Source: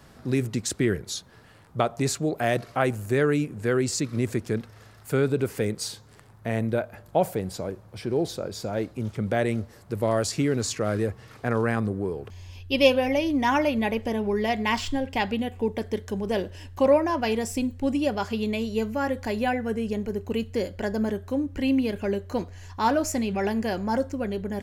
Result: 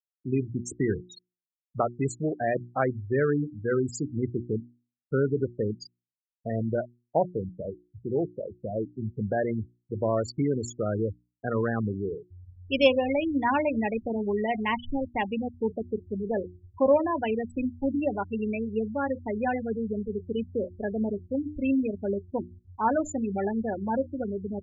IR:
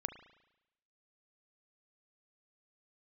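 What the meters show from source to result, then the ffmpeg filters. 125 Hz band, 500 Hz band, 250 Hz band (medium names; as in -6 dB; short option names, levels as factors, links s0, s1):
-3.0 dB, -2.0 dB, -2.5 dB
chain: -af "afftfilt=real='re*gte(hypot(re,im),0.1)':imag='im*gte(hypot(re,im),0.1)':win_size=1024:overlap=0.75,bandreject=f=60:t=h:w=6,bandreject=f=120:t=h:w=6,bandreject=f=180:t=h:w=6,bandreject=f=240:t=h:w=6,bandreject=f=300:t=h:w=6,bandreject=f=360:t=h:w=6,aeval=exprs='0.501*(cos(1*acos(clip(val(0)/0.501,-1,1)))-cos(1*PI/2))+0.00562*(cos(3*acos(clip(val(0)/0.501,-1,1)))-cos(3*PI/2))':c=same,volume=0.841"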